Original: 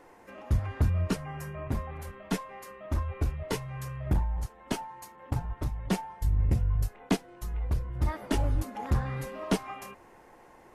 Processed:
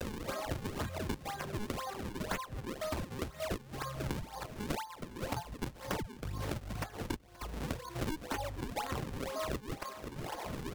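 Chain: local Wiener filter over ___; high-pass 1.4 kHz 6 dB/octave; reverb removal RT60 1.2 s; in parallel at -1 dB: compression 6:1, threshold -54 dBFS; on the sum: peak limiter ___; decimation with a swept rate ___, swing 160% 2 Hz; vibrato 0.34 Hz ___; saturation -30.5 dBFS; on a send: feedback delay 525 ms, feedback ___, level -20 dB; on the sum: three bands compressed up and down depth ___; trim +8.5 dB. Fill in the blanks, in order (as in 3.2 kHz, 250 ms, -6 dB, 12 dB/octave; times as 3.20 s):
15 samples, -28.5 dBFS, 39×, 24 cents, 42%, 100%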